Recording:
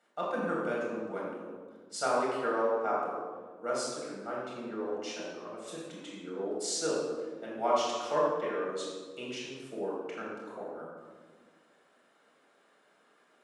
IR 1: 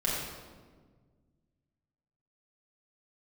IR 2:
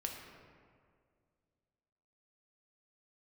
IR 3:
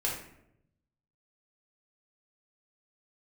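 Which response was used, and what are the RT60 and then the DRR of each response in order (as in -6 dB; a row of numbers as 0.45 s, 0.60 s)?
1; 1.5 s, 2.1 s, 0.80 s; -6.0 dB, 1.0 dB, -4.5 dB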